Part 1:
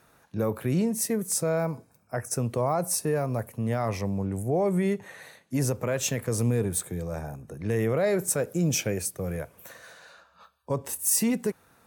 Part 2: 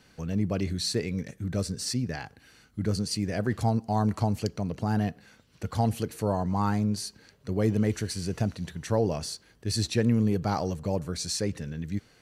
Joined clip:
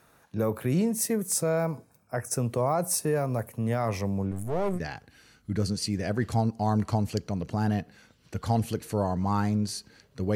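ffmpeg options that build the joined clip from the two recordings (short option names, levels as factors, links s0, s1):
-filter_complex "[0:a]asettb=1/sr,asplit=3[s0][s1][s2];[s0]atrim=end=4.314[s3];[s1]atrim=start=4.31:end=4.8,asetpts=PTS-STARTPTS,afade=t=in:d=0.004:c=qsin,afade=t=out:st=0.486:d=0.004:c=qsin,aeval=exprs='if(lt(val(0),0),0.251*val(0),val(0))':c=same[s4];[s2]atrim=start=4.796[s5];[s3][s4]acrossfade=d=0.004:c1=hsin:c2=qsin[s6];[s6][s5]acrossfade=d=0.004:c1=qsin:c2=hsin,apad=whole_dur=10.35,atrim=end=10.35,atrim=end=4.8,asetpts=PTS-STARTPTS[s7];[1:a]atrim=start=2.03:end=7.64,asetpts=PTS-STARTPTS[s8];[s7][s8]acrossfade=d=0.06:c1=tri:c2=tri"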